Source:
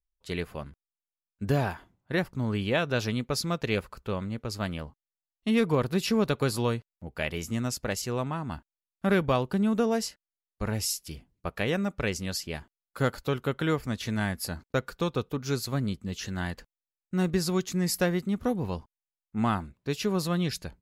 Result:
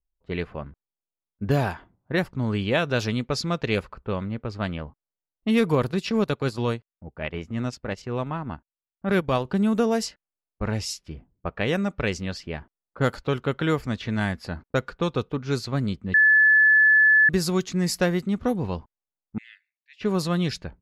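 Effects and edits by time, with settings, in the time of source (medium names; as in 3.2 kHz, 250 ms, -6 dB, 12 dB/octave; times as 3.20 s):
5.91–9.45 s: transient shaper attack -6 dB, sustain -10 dB
16.14–17.29 s: bleep 1.73 kHz -16.5 dBFS
19.38–20.01 s: steep high-pass 1.8 kHz 96 dB/octave
whole clip: level-controlled noise filter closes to 760 Hz, open at -22 dBFS; trim +3.5 dB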